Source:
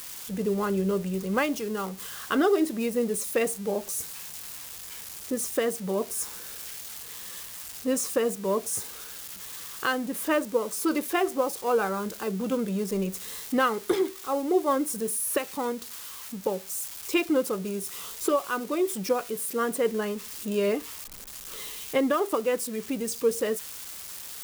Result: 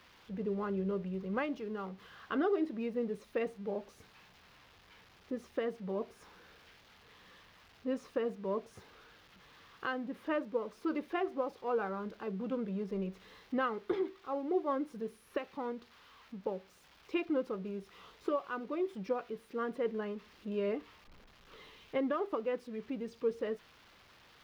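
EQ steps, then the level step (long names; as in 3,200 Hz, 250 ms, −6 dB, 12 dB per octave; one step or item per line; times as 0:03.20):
high-frequency loss of the air 310 metres
−8.0 dB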